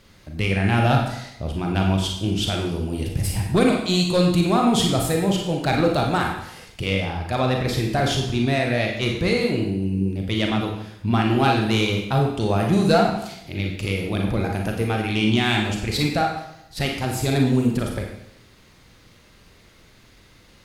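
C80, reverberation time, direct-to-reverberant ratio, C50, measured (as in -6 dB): 6.0 dB, 0.80 s, 0.5 dB, 3.5 dB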